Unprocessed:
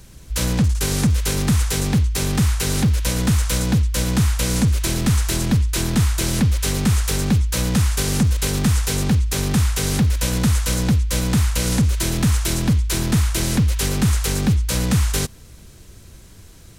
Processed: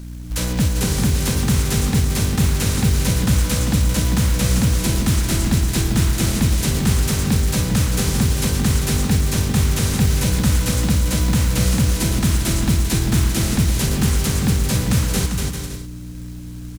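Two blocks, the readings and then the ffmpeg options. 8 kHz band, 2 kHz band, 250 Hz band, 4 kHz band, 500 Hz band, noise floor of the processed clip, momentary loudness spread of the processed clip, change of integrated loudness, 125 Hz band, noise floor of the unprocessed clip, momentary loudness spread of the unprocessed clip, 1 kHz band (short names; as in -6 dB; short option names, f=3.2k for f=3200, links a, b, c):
+1.0 dB, +0.5 dB, +1.0 dB, +0.5 dB, +1.0 dB, -32 dBFS, 3 LU, +1.0 dB, +1.0 dB, -44 dBFS, 1 LU, +1.0 dB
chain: -af "aeval=exprs='val(0)+0.0355*(sin(2*PI*60*n/s)+sin(2*PI*2*60*n/s)/2+sin(2*PI*3*60*n/s)/3+sin(2*PI*4*60*n/s)/4+sin(2*PI*5*60*n/s)/5)':c=same,aecho=1:1:240|396|497.4|563.3|606.2:0.631|0.398|0.251|0.158|0.1,acrusher=bits=5:mode=log:mix=0:aa=0.000001,volume=-1.5dB"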